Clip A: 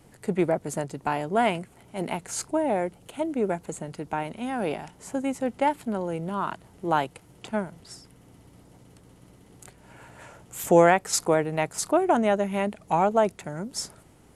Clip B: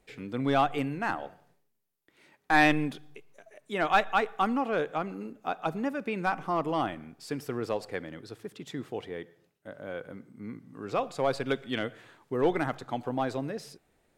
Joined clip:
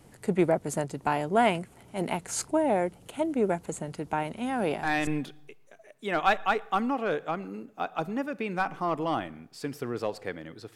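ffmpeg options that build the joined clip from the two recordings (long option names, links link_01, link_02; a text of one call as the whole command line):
ffmpeg -i cue0.wav -i cue1.wav -filter_complex "[1:a]asplit=2[link_01][link_02];[0:a]apad=whole_dur=10.75,atrim=end=10.75,atrim=end=5.072[link_03];[link_02]atrim=start=2.738:end=8.42[link_04];[link_01]atrim=start=2.2:end=2.74,asetpts=PTS-STARTPTS,volume=-6.5dB,afade=type=in:duration=0.004:curve=hsin,afade=type=out:start_time=0.536:duration=0.004:curve=hsin,adelay=199773S[link_05];[link_03][link_04]acrossfade=duration=0.004:curve1=hsin:curve2=hsin[link_06];[link_06][link_05]amix=inputs=2:normalize=0" out.wav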